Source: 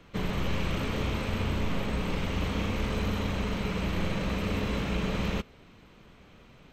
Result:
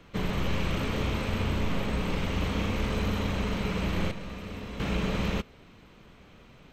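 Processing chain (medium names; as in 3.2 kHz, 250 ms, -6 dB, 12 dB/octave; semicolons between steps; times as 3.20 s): 4.11–4.80 s: feedback comb 240 Hz, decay 0.82 s, mix 70%; trim +1 dB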